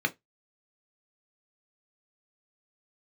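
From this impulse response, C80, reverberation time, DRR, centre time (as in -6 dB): 35.0 dB, 0.15 s, 5.0 dB, 4 ms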